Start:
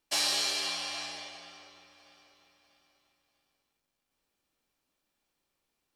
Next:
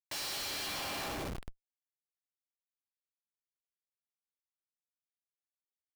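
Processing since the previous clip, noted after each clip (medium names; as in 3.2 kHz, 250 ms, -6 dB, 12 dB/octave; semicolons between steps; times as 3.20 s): Schmitt trigger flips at -39.5 dBFS; trim +1 dB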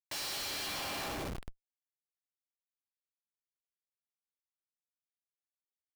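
no audible change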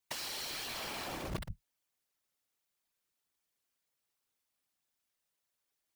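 compressor with a negative ratio -43 dBFS, ratio -0.5; whisper effect; trim +4.5 dB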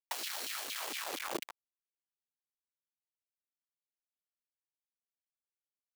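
word length cut 6-bit, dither none; LFO high-pass saw down 4.3 Hz 250–3400 Hz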